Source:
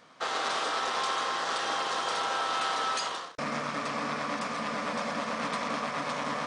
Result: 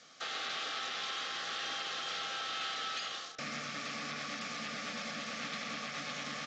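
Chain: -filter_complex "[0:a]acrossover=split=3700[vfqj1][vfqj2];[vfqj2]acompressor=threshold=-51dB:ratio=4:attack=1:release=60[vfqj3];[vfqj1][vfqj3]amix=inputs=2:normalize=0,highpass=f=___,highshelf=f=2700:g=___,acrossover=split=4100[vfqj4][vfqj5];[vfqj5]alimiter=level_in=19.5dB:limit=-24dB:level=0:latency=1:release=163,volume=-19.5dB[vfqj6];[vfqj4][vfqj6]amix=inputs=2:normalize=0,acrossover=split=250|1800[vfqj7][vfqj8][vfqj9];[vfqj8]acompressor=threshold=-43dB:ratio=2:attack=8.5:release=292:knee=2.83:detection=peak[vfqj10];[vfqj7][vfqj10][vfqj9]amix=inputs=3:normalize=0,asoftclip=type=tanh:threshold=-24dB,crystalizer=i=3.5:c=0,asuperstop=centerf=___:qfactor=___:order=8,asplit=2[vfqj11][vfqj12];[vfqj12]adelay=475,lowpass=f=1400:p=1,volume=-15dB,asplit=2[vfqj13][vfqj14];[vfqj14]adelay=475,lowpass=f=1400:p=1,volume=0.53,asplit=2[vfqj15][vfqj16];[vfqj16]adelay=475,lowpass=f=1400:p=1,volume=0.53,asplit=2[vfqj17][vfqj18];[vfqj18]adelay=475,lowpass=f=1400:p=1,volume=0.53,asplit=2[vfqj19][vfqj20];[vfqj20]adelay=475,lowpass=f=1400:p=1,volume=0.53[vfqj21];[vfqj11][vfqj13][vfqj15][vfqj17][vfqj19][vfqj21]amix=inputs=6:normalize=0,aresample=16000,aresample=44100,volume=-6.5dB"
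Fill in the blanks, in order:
55, 5, 980, 5.4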